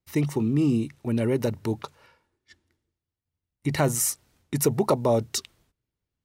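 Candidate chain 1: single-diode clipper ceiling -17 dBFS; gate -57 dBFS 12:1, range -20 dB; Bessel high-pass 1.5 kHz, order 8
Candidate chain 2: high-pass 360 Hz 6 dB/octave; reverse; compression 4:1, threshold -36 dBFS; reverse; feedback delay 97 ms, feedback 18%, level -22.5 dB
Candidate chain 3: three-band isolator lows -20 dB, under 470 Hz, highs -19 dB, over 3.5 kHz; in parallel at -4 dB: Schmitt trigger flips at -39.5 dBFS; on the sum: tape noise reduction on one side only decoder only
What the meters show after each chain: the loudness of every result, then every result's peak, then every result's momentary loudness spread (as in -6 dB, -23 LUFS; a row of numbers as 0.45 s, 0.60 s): -32.5 LUFS, -39.0 LUFS, -31.5 LUFS; -13.5 dBFS, -22.5 dBFS, -12.0 dBFS; 22 LU, 19 LU, 13 LU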